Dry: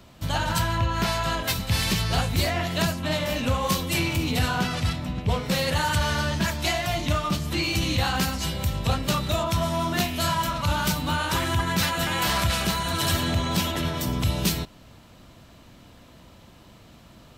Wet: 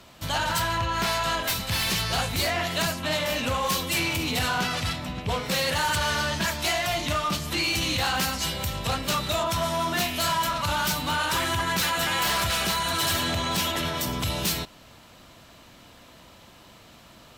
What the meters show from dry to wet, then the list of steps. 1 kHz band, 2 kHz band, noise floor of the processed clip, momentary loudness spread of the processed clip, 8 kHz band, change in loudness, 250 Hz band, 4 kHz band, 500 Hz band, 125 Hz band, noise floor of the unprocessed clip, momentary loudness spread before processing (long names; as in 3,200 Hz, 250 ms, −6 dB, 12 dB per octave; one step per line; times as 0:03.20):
+0.5 dB, +1.5 dB, −51 dBFS, 4 LU, +2.0 dB, −0.5 dB, −4.5 dB, +1.5 dB, −0.5 dB, −6.5 dB, −51 dBFS, 3 LU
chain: low-shelf EQ 380 Hz −9.5 dB
sine wavefolder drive 9 dB, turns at −11.5 dBFS
level −9 dB